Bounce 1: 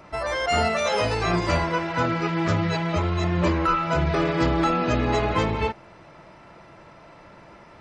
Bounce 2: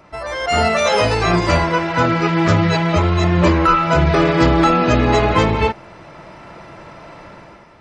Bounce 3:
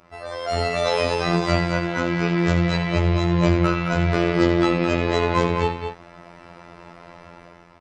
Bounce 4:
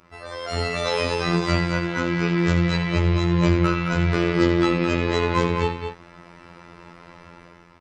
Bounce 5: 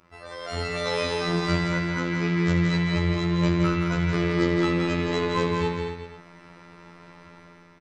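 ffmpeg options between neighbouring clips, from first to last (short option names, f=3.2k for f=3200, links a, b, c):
-af "dynaudnorm=f=120:g=9:m=10dB"
-af "aecho=1:1:78.72|212.8:0.282|0.447,afftfilt=real='hypot(re,im)*cos(PI*b)':imag='0':win_size=2048:overlap=0.75,volume=-3.5dB"
-af "equalizer=f=680:t=o:w=0.48:g=-8.5"
-af "aecho=1:1:169.1|274.1:0.562|0.251,volume=-4.5dB"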